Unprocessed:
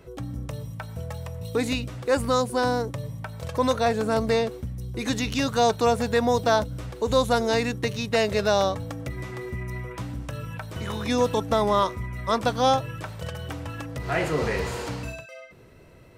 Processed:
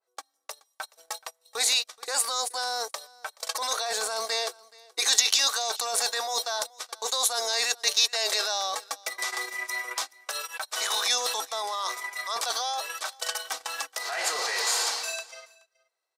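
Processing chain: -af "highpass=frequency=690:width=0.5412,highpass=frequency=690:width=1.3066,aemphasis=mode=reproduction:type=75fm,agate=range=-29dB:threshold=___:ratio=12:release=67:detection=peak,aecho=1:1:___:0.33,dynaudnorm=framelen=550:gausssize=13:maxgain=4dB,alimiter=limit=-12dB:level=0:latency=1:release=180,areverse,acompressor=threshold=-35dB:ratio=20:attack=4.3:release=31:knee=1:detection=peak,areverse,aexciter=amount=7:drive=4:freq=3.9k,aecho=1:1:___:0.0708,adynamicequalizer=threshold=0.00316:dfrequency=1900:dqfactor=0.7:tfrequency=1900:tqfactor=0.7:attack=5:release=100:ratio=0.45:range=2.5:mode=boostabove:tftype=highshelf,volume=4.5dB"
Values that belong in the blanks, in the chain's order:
-47dB, 2.6, 426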